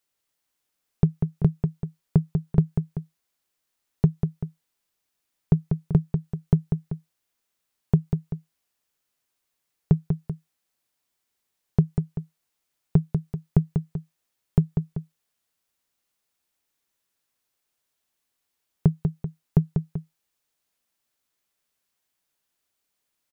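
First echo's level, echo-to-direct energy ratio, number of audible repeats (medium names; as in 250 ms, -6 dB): -6.0 dB, -5.0 dB, 2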